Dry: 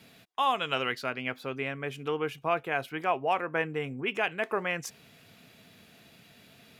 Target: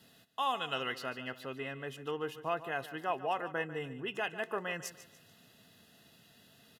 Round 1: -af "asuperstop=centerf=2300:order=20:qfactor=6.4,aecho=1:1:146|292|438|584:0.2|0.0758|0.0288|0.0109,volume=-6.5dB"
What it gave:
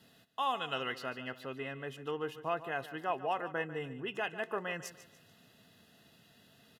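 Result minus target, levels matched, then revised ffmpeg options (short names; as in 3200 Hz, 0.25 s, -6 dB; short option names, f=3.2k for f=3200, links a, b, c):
8000 Hz band -3.0 dB
-af "asuperstop=centerf=2300:order=20:qfactor=6.4,highshelf=f=4.3k:g=4.5,aecho=1:1:146|292|438|584:0.2|0.0758|0.0288|0.0109,volume=-6.5dB"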